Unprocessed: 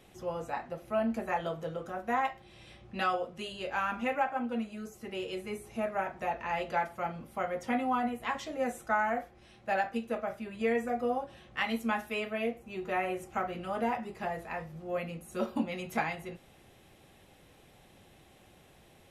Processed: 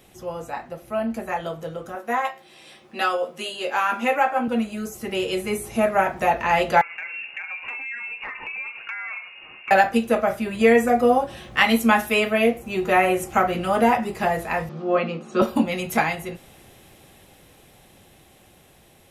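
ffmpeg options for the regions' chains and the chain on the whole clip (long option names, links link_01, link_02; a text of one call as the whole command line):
ffmpeg -i in.wav -filter_complex "[0:a]asettb=1/sr,asplit=3[link_01][link_02][link_03];[link_01]atrim=end=1.954[link_04];[link_02]atrim=start=1.95:end=4.48,asetpts=PTS-STARTPTS,afade=type=in:duration=0.004:curve=qsin,afade=type=out:start_time=2.526:duration=0.004:curve=qsin,highpass=280,asplit=2[link_05][link_06];[link_06]adelay=13,volume=-5dB[link_07];[link_05][link_07]amix=inputs=2:normalize=0,atrim=end_sample=111573[link_08];[link_03]atrim=start=4.476[link_09];[link_04][link_08]acrossfade=duration=0.004:curve1=hsin:curve2=qsin[link_10];[link_10][link_09]acrossfade=duration=0.004:curve1=qsin:curve2=hsin,asettb=1/sr,asplit=3[link_11][link_12][link_13];[link_11]atrim=end=6.814[link_14];[link_12]atrim=start=6.81:end=9.71,asetpts=PTS-STARTPTS,afade=type=in:duration=0.004:curve=qsin,afade=type=out:start_time=2.896:duration=0.004:curve=qsin,lowpass=frequency=2500:width_type=q:width=0.5098,lowpass=frequency=2500:width_type=q:width=0.6013,lowpass=frequency=2500:width_type=q:width=0.9,lowpass=frequency=2500:width_type=q:width=2.563,afreqshift=-2900,acompressor=threshold=-43dB:ratio=16:attack=3.2:release=140:knee=1:detection=peak[link_15];[link_13]atrim=start=9.706[link_16];[link_14][link_15]acrossfade=duration=0.004:curve1=hsin:curve2=qsin[link_17];[link_17][link_16]acrossfade=duration=0.004:curve1=qsin:curve2=hsin,asettb=1/sr,asplit=3[link_18][link_19][link_20];[link_18]atrim=end=14.694[link_21];[link_19]atrim=start=14.69:end=15.42,asetpts=PTS-STARTPTS,afade=type=in:duration=0.004:curve=qsin,afade=type=out:start_time=0.726:duration=0.004:curve=qsin,highpass=frequency=170:width=0.5412,highpass=frequency=170:width=1.3066,equalizer=frequency=230:width_type=q:width=4:gain=6,equalizer=frequency=410:width_type=q:width=4:gain=6,equalizer=frequency=1200:width_type=q:width=4:gain=8,equalizer=frequency=2000:width_type=q:width=4:gain=-4,lowpass=frequency=5000:width=0.5412,lowpass=frequency=5000:width=1.3066,asplit=2[link_22][link_23];[link_23]adelay=14,volume=-14dB[link_24];[link_22][link_24]amix=inputs=2:normalize=0,atrim=end_sample=32193[link_25];[link_20]atrim=start=15.416[link_26];[link_21][link_25]acrossfade=duration=0.004:curve1=hsin:curve2=qsin[link_27];[link_27][link_26]acrossfade=duration=0.004:curve1=qsin:curve2=hsin,highshelf=frequency=7700:gain=9,dynaudnorm=framelen=970:gausssize=9:maxgain=9.5dB,volume=4.5dB" out.wav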